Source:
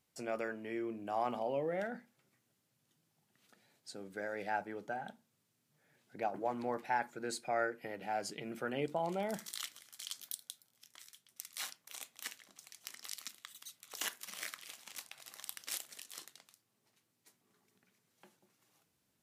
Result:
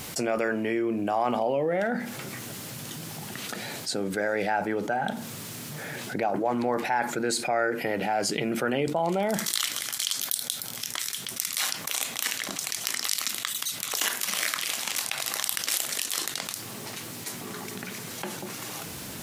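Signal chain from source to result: fast leveller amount 70%; gain +6.5 dB

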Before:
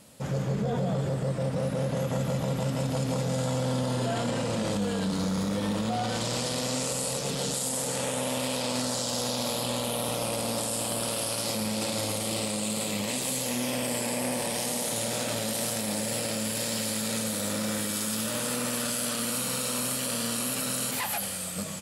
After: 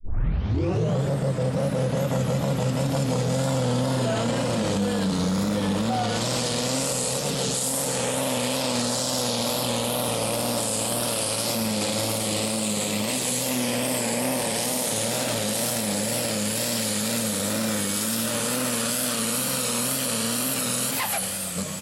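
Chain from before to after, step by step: tape start at the beginning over 0.96 s; wow and flutter 69 cents; gain +4.5 dB

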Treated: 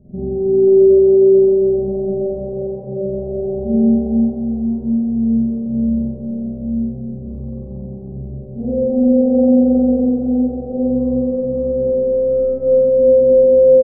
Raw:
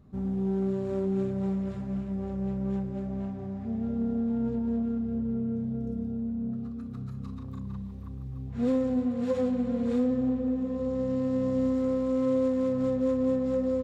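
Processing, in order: steep low-pass 670 Hz 48 dB/oct; notches 50/100/150/200 Hz; comb 5.2 ms, depth 50%; compressor, threshold -30 dBFS, peak gain reduction 8.5 dB; on a send: echo 0.316 s -3.5 dB; on the sum: spring tank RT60 2.3 s, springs 44 ms, chirp 45 ms, DRR -8.5 dB; gain +8 dB

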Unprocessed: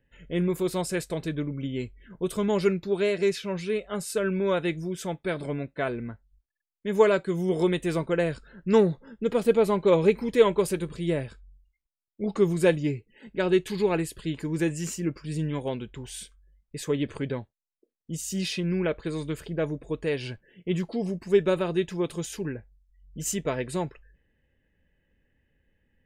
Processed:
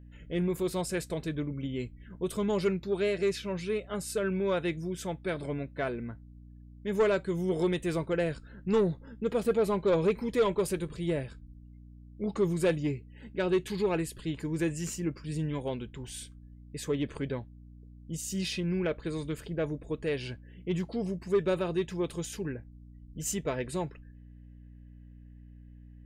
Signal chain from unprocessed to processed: soft clip -15.5 dBFS, distortion -15 dB; hum 60 Hz, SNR 18 dB; gain -3 dB

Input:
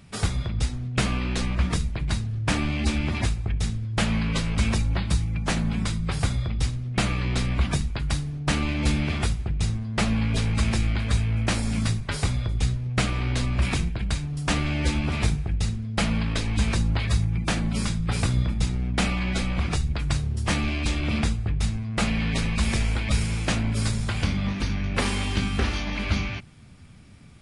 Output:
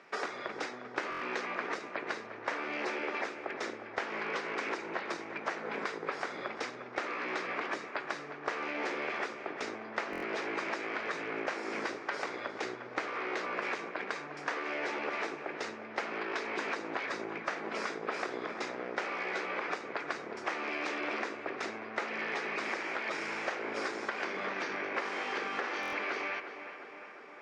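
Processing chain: one-sided fold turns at -23 dBFS; elliptic band-pass 390–5900 Hz, stop band 80 dB; resonant high shelf 2500 Hz -8.5 dB, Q 1.5; compressor 10:1, threshold -36 dBFS, peak gain reduction 13 dB; tape echo 0.358 s, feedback 74%, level -10 dB, low-pass 3200 Hz; stuck buffer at 1.1/10.11/25.81, samples 1024, times 4; gain +4 dB

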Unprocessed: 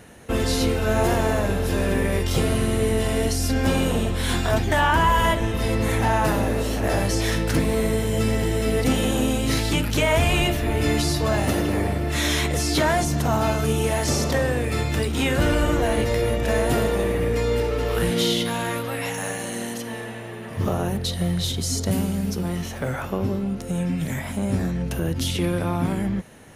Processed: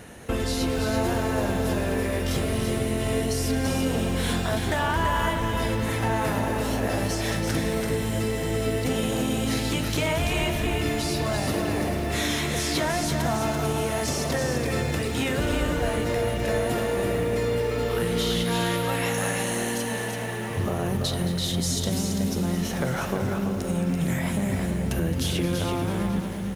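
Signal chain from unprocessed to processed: compressor 5:1, threshold -26 dBFS, peak gain reduction 10 dB; echo 0.335 s -5.5 dB; lo-fi delay 0.221 s, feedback 80%, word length 8-bit, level -12.5 dB; gain +2.5 dB

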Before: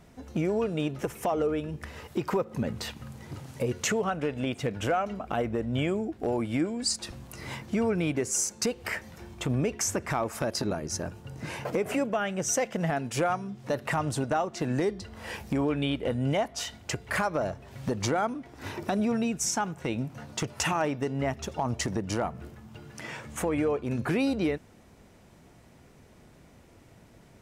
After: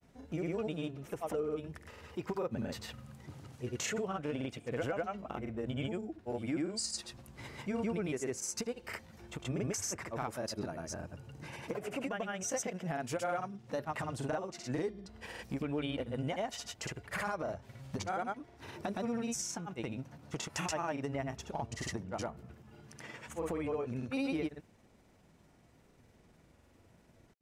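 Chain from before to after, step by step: grains, pitch spread up and down by 0 st; gain -7.5 dB

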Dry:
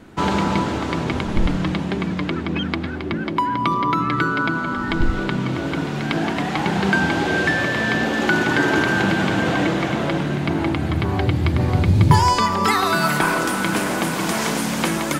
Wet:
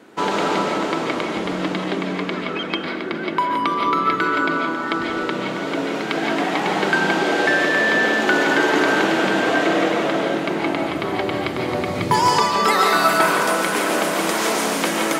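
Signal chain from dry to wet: HPF 300 Hz 12 dB/oct; bell 450 Hz +4.5 dB 0.37 oct; digital reverb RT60 0.6 s, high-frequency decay 0.6×, pre-delay 0.105 s, DRR 0.5 dB

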